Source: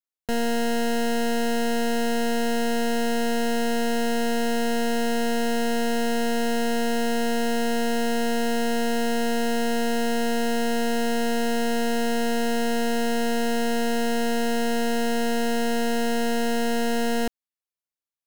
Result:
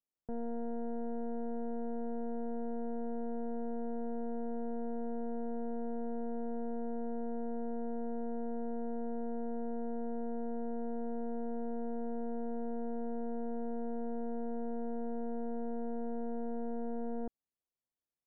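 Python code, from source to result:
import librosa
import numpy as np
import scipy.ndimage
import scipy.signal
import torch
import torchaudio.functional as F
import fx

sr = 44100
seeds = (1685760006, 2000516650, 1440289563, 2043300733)

y = (np.mod(10.0 ** (30.5 / 20.0) * x + 1.0, 2.0) - 1.0) / 10.0 ** (30.5 / 20.0)
y = scipy.ndimage.gaussian_filter1d(y, 9.1, mode='constant')
y = F.gain(torch.from_numpy(y), 3.0).numpy()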